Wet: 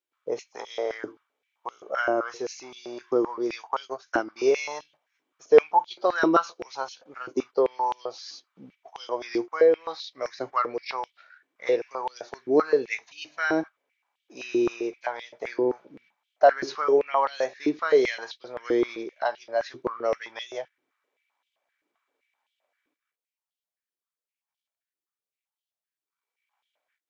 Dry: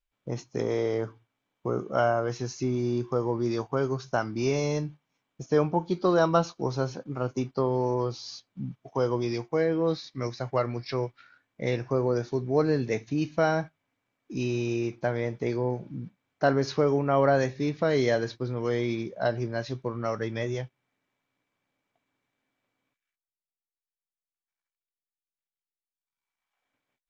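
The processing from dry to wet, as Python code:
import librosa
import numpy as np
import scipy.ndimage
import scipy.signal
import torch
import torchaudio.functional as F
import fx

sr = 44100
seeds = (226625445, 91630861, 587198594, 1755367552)

y = fx.transient(x, sr, attack_db=3, sustain_db=-8, at=(3.71, 4.54), fade=0.02)
y = fx.filter_held_highpass(y, sr, hz=7.7, low_hz=330.0, high_hz=3200.0)
y = F.gain(torch.from_numpy(y), -1.5).numpy()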